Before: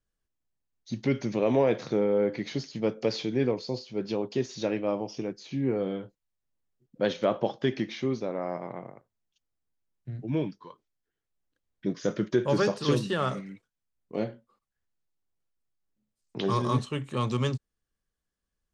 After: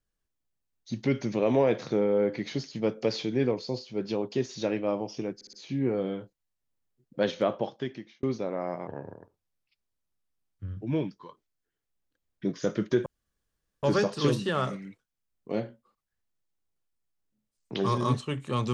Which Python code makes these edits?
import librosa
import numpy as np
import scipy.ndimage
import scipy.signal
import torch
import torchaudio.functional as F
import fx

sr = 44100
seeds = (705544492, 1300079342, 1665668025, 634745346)

y = fx.edit(x, sr, fx.stutter(start_s=5.35, slice_s=0.06, count=4),
    fx.fade_out_span(start_s=7.2, length_s=0.85),
    fx.speed_span(start_s=8.69, length_s=1.54, speed=0.79),
    fx.insert_room_tone(at_s=12.47, length_s=0.77), tone=tone)